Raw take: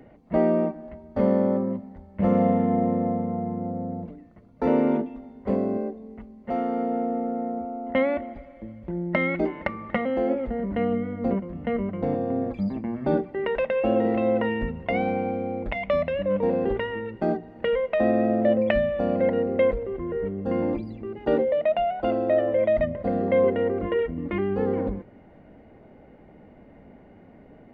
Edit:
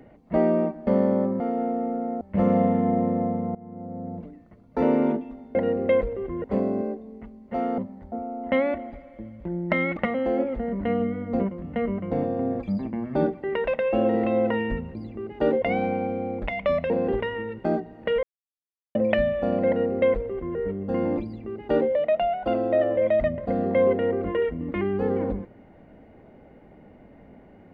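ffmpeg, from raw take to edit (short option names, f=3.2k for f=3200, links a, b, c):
-filter_complex "[0:a]asplit=15[a][b][c][d][e][f][g][h][i][j][k][l][m][n][o];[a]atrim=end=0.872[p];[b]atrim=start=1.188:end=1.722[q];[c]atrim=start=6.738:end=7.552[r];[d]atrim=start=2.058:end=3.4,asetpts=PTS-STARTPTS,afade=t=out:st=1.338:d=0.004:c=hsin:silence=0.112202[s];[e]atrim=start=3.4:end=5.402,asetpts=PTS-STARTPTS,afade=t=in:d=0.72:silence=0.112202[t];[f]atrim=start=19.248:end=20.142[u];[g]atrim=start=5.398:end=6.742[v];[h]atrim=start=1.718:end=2.062[w];[i]atrim=start=7.548:end=9.402[x];[j]atrim=start=9.878:end=14.862[y];[k]atrim=start=20.808:end=21.482[z];[l]atrim=start=14.858:end=16.142[aa];[m]atrim=start=16.468:end=17.8,asetpts=PTS-STARTPTS,afade=t=out:st=1.328:d=0.004:c=hsin[ab];[n]atrim=start=17.8:end=18.52,asetpts=PTS-STARTPTS,volume=0[ac];[o]atrim=start=18.52,asetpts=PTS-STARTPTS,afade=t=in:d=0.004:c=hsin[ad];[p][q]acrossfade=d=0.004:c1=hsin:c2=hsin[ae];[ae][r]acrossfade=d=0.004:c1=hsin:c2=hsin[af];[s][t]concat=n=2:v=0:a=1[ag];[af][ag]acrossfade=d=0.004:c1=hsin:c2=hsin[ah];[ah][u]acrossfade=d=0.004:c1=hsin:c2=hsin[ai];[ai][v]acrossfade=d=0.004:c1=hsin:c2=hsin[aj];[aj][w]acrossfade=d=0.004:c1=hsin:c2=hsin[ak];[ak][x]acrossfade=d=0.004:c1=hsin:c2=hsin[al];[al][y]acrossfade=d=0.004:c1=hsin:c2=hsin[am];[am][z]acrossfade=d=0.004:c1=hsin:c2=hsin[an];[an][aa]acrossfade=d=0.004:c1=hsin:c2=hsin[ao];[ab][ac][ad]concat=n=3:v=0:a=1[ap];[ao][ap]acrossfade=d=0.004:c1=hsin:c2=hsin"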